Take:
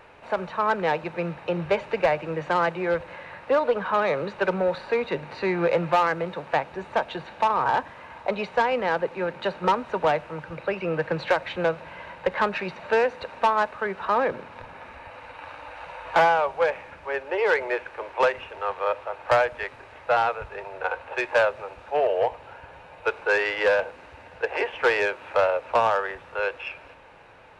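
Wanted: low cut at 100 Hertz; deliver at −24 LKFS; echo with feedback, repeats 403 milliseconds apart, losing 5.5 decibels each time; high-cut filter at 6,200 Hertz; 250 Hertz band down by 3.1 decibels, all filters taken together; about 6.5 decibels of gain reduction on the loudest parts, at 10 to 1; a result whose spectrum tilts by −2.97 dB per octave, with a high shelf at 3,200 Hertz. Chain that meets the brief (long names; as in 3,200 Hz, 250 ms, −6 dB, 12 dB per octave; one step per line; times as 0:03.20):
high-pass filter 100 Hz
low-pass filter 6,200 Hz
parametric band 250 Hz −5 dB
high-shelf EQ 3,200 Hz −4.5 dB
downward compressor 10 to 1, threshold −23 dBFS
repeating echo 403 ms, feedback 53%, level −5.5 dB
level +5.5 dB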